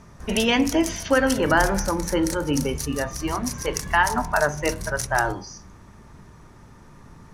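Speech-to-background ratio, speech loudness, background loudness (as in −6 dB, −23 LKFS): 8.5 dB, −23.5 LKFS, −32.0 LKFS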